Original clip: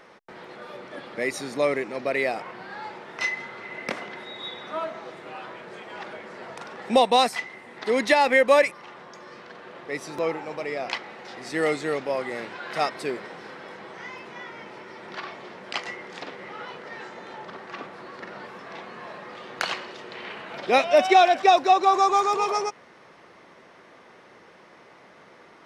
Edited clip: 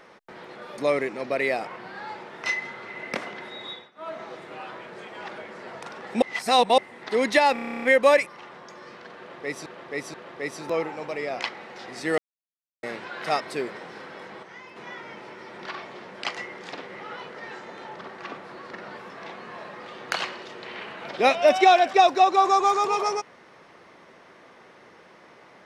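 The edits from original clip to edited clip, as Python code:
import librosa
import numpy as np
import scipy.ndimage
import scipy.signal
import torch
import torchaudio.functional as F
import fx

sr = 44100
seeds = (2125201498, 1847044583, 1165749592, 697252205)

y = fx.edit(x, sr, fx.cut(start_s=0.78, length_s=0.75),
    fx.fade_down_up(start_s=4.41, length_s=0.54, db=-21.5, fade_s=0.25),
    fx.reverse_span(start_s=6.97, length_s=0.56),
    fx.stutter(start_s=8.28, slice_s=0.03, count=11),
    fx.repeat(start_s=9.63, length_s=0.48, count=3),
    fx.silence(start_s=11.67, length_s=0.65),
    fx.clip_gain(start_s=13.92, length_s=0.33, db=-5.5), tone=tone)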